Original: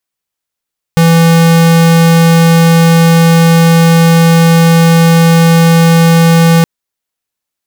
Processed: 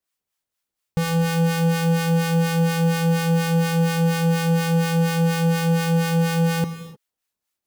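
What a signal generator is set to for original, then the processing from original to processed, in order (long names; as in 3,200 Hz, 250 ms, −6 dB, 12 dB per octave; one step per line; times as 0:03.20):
tone square 166 Hz −5.5 dBFS 5.67 s
brickwall limiter −16.5 dBFS
two-band tremolo in antiphase 4.2 Hz, depth 70%, crossover 800 Hz
reverb whose tail is shaped and stops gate 330 ms flat, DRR 11 dB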